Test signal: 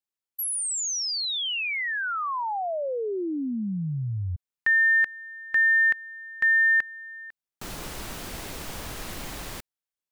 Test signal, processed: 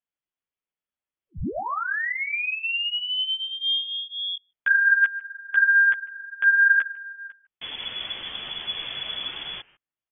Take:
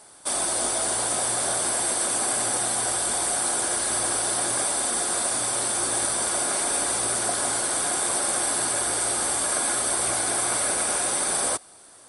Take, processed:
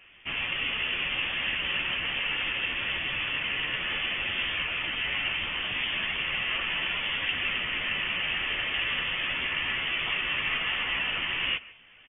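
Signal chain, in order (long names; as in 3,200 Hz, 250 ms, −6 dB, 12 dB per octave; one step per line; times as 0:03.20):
far-end echo of a speakerphone 150 ms, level −19 dB
multi-voice chorus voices 4, 0.71 Hz, delay 13 ms, depth 3.2 ms
voice inversion scrambler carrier 3,400 Hz
level +4 dB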